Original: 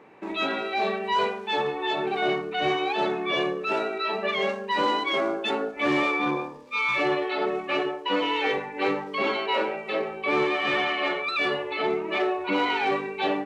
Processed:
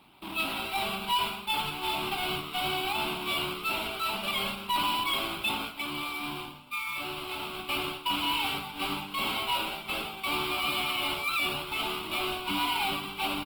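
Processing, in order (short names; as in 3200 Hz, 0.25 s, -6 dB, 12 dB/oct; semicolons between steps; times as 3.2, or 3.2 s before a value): half-waves squared off; bell 2800 Hz +7.5 dB 0.84 oct; limiter -14 dBFS, peak gain reduction 4 dB; 5.8–7.59 compressor, threshold -24 dBFS, peak gain reduction 6 dB; fixed phaser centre 1800 Hz, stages 6; doubler 35 ms -11 dB; on a send: feedback echo 88 ms, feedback 34%, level -17 dB; on the sum: gain -6 dB; Opus 20 kbps 48000 Hz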